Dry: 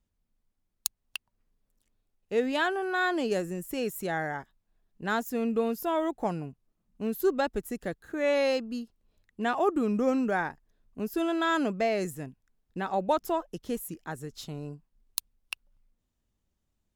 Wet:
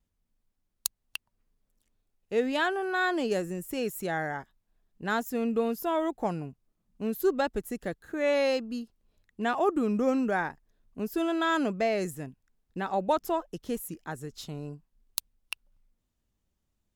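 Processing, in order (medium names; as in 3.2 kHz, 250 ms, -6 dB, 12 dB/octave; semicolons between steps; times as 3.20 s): vibrato 0.41 Hz 9.2 cents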